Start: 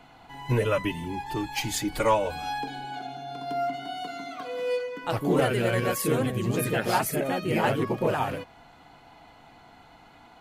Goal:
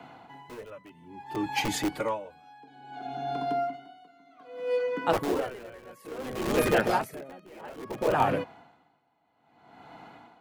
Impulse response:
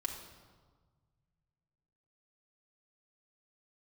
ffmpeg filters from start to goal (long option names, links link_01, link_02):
-filter_complex "[0:a]highpass=140,highshelf=frequency=2900:gain=-11.5,acrossover=split=250|1100[link_01][link_02][link_03];[link_01]aeval=exprs='(mod(42.2*val(0)+1,2)-1)/42.2':channel_layout=same[link_04];[link_04][link_02][link_03]amix=inputs=3:normalize=0,aeval=exprs='val(0)*pow(10,-26*(0.5-0.5*cos(2*PI*0.6*n/s))/20)':channel_layout=same,volume=6.5dB"